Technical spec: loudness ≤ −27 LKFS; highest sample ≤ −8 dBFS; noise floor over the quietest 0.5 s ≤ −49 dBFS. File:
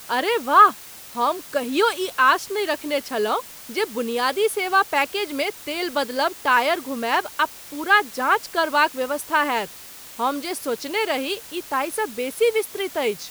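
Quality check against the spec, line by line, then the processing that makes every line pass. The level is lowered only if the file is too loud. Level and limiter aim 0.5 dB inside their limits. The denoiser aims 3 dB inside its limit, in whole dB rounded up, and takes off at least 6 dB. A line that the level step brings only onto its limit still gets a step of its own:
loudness −22.0 LKFS: out of spec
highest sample −3.0 dBFS: out of spec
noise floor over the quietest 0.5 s −41 dBFS: out of spec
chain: broadband denoise 6 dB, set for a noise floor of −41 dBFS
level −5.5 dB

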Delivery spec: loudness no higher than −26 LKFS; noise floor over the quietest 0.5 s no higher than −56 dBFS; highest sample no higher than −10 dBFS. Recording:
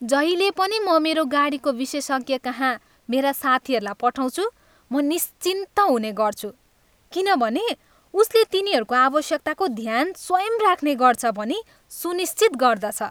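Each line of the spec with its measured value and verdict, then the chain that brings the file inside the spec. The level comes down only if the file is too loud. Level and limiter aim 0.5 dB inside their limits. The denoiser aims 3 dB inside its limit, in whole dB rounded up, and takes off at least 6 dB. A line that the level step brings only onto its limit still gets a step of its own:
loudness −21.5 LKFS: out of spec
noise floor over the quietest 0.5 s −60 dBFS: in spec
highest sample −3.5 dBFS: out of spec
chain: level −5 dB
brickwall limiter −10.5 dBFS

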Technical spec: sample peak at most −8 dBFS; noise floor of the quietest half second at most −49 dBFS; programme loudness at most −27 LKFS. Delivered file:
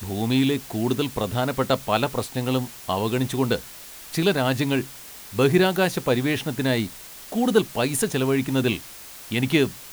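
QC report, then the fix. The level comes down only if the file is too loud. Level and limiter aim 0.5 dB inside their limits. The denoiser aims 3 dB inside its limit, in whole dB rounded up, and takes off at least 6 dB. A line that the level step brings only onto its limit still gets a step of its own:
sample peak −4.5 dBFS: out of spec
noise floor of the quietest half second −41 dBFS: out of spec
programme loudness −23.5 LKFS: out of spec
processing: broadband denoise 7 dB, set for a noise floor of −41 dBFS
level −4 dB

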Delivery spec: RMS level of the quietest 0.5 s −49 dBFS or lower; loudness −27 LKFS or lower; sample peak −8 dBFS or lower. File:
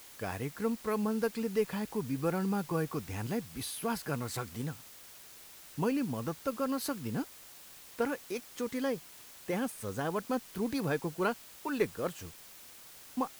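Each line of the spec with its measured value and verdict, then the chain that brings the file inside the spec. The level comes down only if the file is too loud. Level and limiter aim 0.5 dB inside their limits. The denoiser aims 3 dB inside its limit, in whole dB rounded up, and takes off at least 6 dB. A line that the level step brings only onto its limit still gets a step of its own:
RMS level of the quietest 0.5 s −53 dBFS: in spec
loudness −35.0 LKFS: in spec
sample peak −16.5 dBFS: in spec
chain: no processing needed

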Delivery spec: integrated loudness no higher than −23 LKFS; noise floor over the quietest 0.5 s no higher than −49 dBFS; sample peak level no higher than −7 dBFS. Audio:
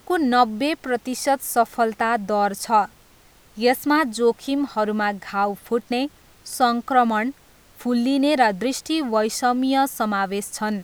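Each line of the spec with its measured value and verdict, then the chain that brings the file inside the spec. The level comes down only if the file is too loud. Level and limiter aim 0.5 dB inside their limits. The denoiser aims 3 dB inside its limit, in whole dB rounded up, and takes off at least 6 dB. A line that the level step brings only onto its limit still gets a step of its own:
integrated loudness −21.5 LKFS: out of spec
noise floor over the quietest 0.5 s −52 dBFS: in spec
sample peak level −4.5 dBFS: out of spec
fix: level −2 dB
brickwall limiter −7.5 dBFS

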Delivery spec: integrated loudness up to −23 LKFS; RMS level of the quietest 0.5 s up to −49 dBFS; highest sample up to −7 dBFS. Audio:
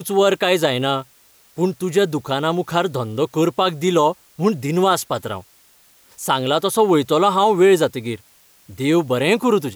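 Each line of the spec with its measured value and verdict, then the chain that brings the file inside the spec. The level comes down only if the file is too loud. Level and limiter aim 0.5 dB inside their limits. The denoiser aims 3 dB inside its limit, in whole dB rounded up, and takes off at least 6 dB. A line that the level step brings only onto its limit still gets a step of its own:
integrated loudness −18.5 LKFS: out of spec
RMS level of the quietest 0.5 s −53 dBFS: in spec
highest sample −5.5 dBFS: out of spec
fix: level −5 dB

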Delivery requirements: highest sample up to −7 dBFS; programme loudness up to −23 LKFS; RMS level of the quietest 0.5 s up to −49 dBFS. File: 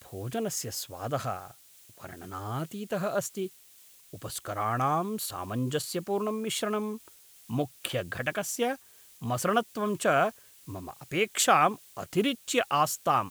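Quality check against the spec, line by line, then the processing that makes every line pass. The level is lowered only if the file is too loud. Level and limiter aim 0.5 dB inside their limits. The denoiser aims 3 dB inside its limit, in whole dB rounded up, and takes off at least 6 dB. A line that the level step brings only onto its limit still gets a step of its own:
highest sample −7.5 dBFS: in spec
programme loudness −30.0 LKFS: in spec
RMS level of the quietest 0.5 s −56 dBFS: in spec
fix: no processing needed

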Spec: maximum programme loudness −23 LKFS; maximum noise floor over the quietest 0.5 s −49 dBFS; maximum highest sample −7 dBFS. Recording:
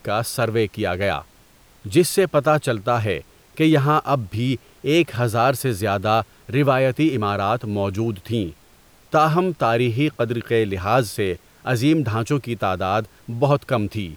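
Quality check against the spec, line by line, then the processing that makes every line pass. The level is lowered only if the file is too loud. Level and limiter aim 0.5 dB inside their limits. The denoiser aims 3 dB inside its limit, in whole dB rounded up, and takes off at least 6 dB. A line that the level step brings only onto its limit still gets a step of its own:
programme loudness −21.0 LKFS: out of spec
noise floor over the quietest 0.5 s −52 dBFS: in spec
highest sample −6.0 dBFS: out of spec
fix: level −2.5 dB

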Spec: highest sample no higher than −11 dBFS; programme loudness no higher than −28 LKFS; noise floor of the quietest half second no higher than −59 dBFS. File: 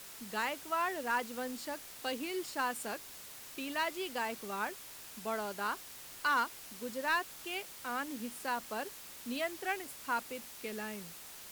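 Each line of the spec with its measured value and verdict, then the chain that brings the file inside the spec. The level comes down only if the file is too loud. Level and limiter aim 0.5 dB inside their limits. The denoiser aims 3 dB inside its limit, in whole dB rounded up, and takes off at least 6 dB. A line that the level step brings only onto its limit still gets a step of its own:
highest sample −22.0 dBFS: in spec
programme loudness −37.5 LKFS: in spec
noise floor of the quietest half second −50 dBFS: out of spec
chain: broadband denoise 12 dB, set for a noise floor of −50 dBFS

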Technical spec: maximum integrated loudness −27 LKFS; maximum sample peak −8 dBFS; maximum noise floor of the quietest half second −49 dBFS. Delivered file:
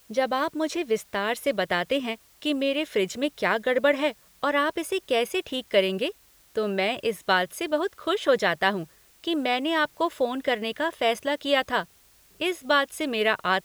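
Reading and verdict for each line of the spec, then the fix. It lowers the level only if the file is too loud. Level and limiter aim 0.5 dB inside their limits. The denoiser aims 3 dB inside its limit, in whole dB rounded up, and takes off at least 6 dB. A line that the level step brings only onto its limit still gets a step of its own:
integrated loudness −26.0 LKFS: out of spec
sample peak −6.5 dBFS: out of spec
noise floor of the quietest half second −58 dBFS: in spec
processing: level −1.5 dB
brickwall limiter −8.5 dBFS

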